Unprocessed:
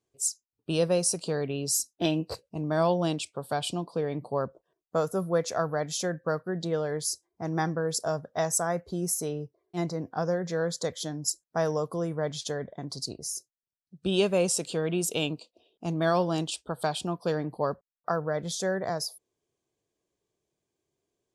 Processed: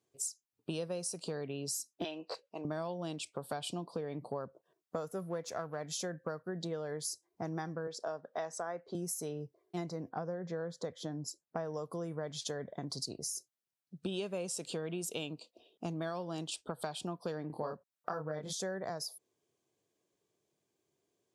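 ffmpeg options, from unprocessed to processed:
-filter_complex "[0:a]asettb=1/sr,asplit=3[s0][s1][s2];[s0]atrim=end=2.044[s3];[s1]atrim=start=2.04:end=2.65,asetpts=PTS-STARTPTS,afade=t=in:d=0.004:c=qsin,afade=t=out:st=0.606:d=0.004:c=qsin,highpass=530,lowpass=4800[s4];[s2]atrim=start=2.646[s5];[s3][s4]acrossfade=d=0.004:c1=hsin:c2=qsin[s6];[s6][s5]acrossfade=d=0.004:c1=qsin:c2=hsin,asettb=1/sr,asplit=3[s7][s8][s9];[s7]atrim=end=5.074[s10];[s8]atrim=start=5.07:end=5.84,asetpts=PTS-STARTPTS,afade=t=in:d=0.004:c=qsin,afade=t=out:st=0.766:d=0.004:c=qsin,aeval=exprs='if(lt(val(0),0),0.708*val(0),val(0))':c=same[s11];[s9]atrim=start=5.836[s12];[s10][s11]acrossfade=d=0.004:c1=hsin:c2=qsin[s13];[s13][s12]acrossfade=d=0.004:c1=qsin:c2=hsin,asettb=1/sr,asplit=3[s14][s15][s16];[s14]atrim=end=7.874[s17];[s15]atrim=start=7.87:end=8.95,asetpts=PTS-STARTPTS,afade=t=in:d=0.004:c=qsin,afade=t=out:st=1.076:d=0.004:c=qsin,highpass=290,lowpass=3800[s18];[s16]atrim=start=8.946[s19];[s17][s18]acrossfade=d=0.004:c1=hsin:c2=qsin[s20];[s20][s19]acrossfade=d=0.004:c1=qsin:c2=hsin,asettb=1/sr,asplit=3[s21][s22][s23];[s21]atrim=end=10.094[s24];[s22]atrim=start=10.09:end=11.74,asetpts=PTS-STARTPTS,afade=t=in:d=0.004:c=qsin,afade=t=out:st=1.646:d=0.004:c=qsin,lowpass=f=1500:p=1[s25];[s23]atrim=start=11.736[s26];[s24][s25]acrossfade=d=0.004:c1=hsin:c2=qsin[s27];[s27][s26]acrossfade=d=0.004:c1=qsin:c2=hsin,asettb=1/sr,asplit=3[s28][s29][s30];[s28]atrim=end=17.474[s31];[s29]atrim=start=17.47:end=18.53,asetpts=PTS-STARTPTS,afade=t=in:d=0.004:c=qsin,afade=t=out:st=1.056:d=0.004:c=qsin,asplit=2[s32][s33];[s33]adelay=26,volume=0.75[s34];[s32][s34]amix=inputs=2:normalize=0,atrim=end_sample=46746[s35];[s30]atrim=start=18.526[s36];[s31][s35]acrossfade=d=0.004:c1=hsin:c2=qsin[s37];[s37][s36]acrossfade=d=0.004:c1=qsin:c2=hsin,highpass=110,acompressor=threshold=0.0141:ratio=6,volume=1.12"

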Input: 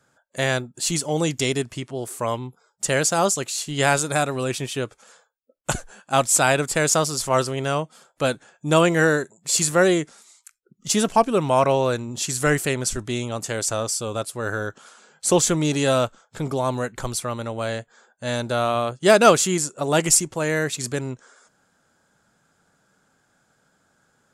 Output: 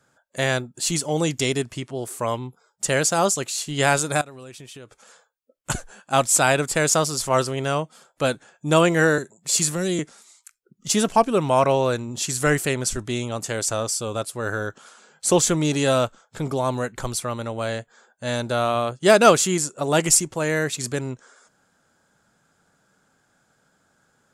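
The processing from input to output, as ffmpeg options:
-filter_complex "[0:a]asettb=1/sr,asplit=3[s0][s1][s2];[s0]atrim=end=4.214[s3];[s1]atrim=start=4.21:end=5.7,asetpts=PTS-STARTPTS,afade=t=in:d=0.004:c=qsin,afade=t=out:st=1.486:d=0.004:c=qsin,acompressor=threshold=0.0126:ratio=8:attack=3.2:release=140:knee=1:detection=peak[s4];[s2]atrim=start=5.696[s5];[s3][s4]acrossfade=d=0.004:c1=hsin:c2=qsin[s6];[s6][s5]acrossfade=d=0.004:c1=qsin:c2=hsin,asettb=1/sr,asplit=3[s7][s8][s9];[s7]atrim=end=9.184[s10];[s8]atrim=start=9.18:end=9.99,asetpts=PTS-STARTPTS,afade=t=in:d=0.004:c=qsin,afade=t=out:st=0.806:d=0.004:c=qsin,acrossover=split=300|3000[s11][s12][s13];[s12]acompressor=threshold=0.0282:ratio=6:attack=3.2:release=140:knee=2.83:detection=peak[s14];[s11][s14][s13]amix=inputs=3:normalize=0[s15];[s9]atrim=start=9.986[s16];[s10][s15]acrossfade=d=0.004:c1=hsin:c2=qsin[s17];[s17][s16]acrossfade=d=0.004:c1=qsin:c2=hsin"

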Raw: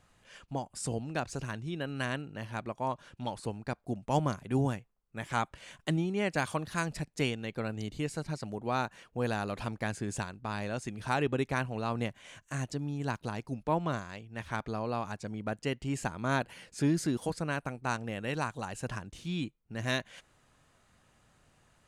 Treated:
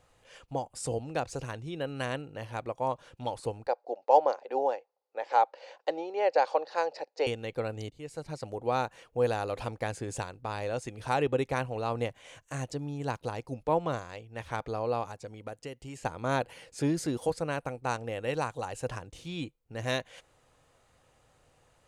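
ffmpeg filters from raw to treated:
-filter_complex "[0:a]asettb=1/sr,asplit=3[s0][s1][s2];[s0]atrim=end=3.674[s3];[s1]atrim=start=3.67:end=7.27,asetpts=PTS-STARTPTS,afade=t=in:d=0.004:c=qsin,afade=t=out:st=3.596:d=0.004:c=qsin,highpass=f=390:w=0.5412,highpass=f=390:w=1.3066,equalizer=f=540:t=q:w=4:g=8,equalizer=f=830:t=q:w=4:g=9,equalizer=f=1200:t=q:w=4:g=-4,equalizer=f=2200:t=q:w=4:g=-4,equalizer=f=3300:t=q:w=4:g=-8,equalizer=f=4600:t=q:w=4:g=5,lowpass=f=5000:w=0.5412,lowpass=f=5000:w=1.3066[s4];[s2]atrim=start=7.266[s5];[s3][s4]acrossfade=d=0.004:c1=hsin:c2=qsin[s6];[s6][s5]acrossfade=d=0.004:c1=qsin:c2=hsin,asettb=1/sr,asplit=3[s7][s8][s9];[s7]atrim=end=15.034[s10];[s8]atrim=start=15.03:end=16.05,asetpts=PTS-STARTPTS,afade=t=in:d=0.004:c=qsin,afade=t=out:st=1.016:d=0.004:c=qsin,acrossover=split=1300|5400[s11][s12][s13];[s11]acompressor=threshold=0.00891:ratio=4[s14];[s12]acompressor=threshold=0.00282:ratio=4[s15];[s13]acompressor=threshold=0.00178:ratio=4[s16];[s14][s15][s16]amix=inputs=3:normalize=0[s17];[s9]atrim=start=16.046[s18];[s10][s17]acrossfade=d=0.004:c1=hsin:c2=qsin[s19];[s19][s18]acrossfade=d=0.004:c1=qsin:c2=hsin,asplit=2[s20][s21];[s20]atrim=end=7.9,asetpts=PTS-STARTPTS,afade=t=out:st=7.896:d=0.004:c=hsin:silence=0.112202[s22];[s21]atrim=start=7.9,asetpts=PTS-STARTPTS,afade=t=in:d=0.58:silence=0.112202[s23];[s22][s23]concat=n=2:v=0:a=1,equalizer=f=200:t=o:w=0.33:g=-11,equalizer=f=500:t=o:w=0.33:g=9,equalizer=f=800:t=o:w=0.33:g=4,equalizer=f=1600:t=o:w=0.33:g=-3"

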